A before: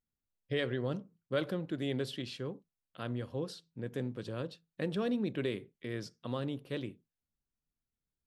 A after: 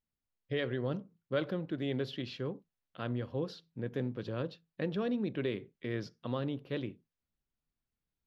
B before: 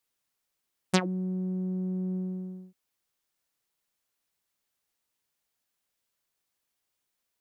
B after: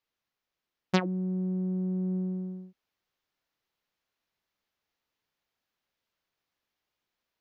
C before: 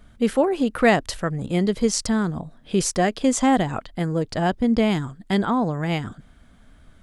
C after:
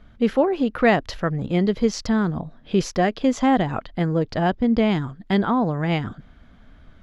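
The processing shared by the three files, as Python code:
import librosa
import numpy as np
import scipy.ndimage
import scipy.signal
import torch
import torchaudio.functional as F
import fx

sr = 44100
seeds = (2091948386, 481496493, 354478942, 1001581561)

p1 = fx.rider(x, sr, range_db=4, speed_s=0.5)
p2 = x + F.gain(torch.from_numpy(p1), -2.5).numpy()
p3 = np.convolve(p2, np.full(5, 1.0 / 5))[:len(p2)]
y = F.gain(torch.from_numpy(p3), -4.0).numpy()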